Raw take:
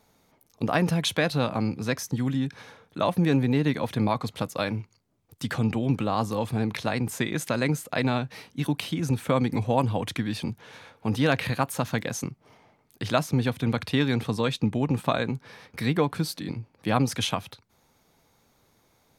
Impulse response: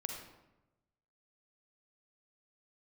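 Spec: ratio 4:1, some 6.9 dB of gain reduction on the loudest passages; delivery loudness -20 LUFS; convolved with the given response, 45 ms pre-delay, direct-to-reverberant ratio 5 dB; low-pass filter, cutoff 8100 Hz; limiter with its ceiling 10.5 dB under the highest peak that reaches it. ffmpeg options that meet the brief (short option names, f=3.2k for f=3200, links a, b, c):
-filter_complex "[0:a]lowpass=8.1k,acompressor=threshold=-26dB:ratio=4,alimiter=limit=-22dB:level=0:latency=1,asplit=2[a][b];[1:a]atrim=start_sample=2205,adelay=45[c];[b][c]afir=irnorm=-1:irlink=0,volume=-5dB[d];[a][d]amix=inputs=2:normalize=0,volume=13dB"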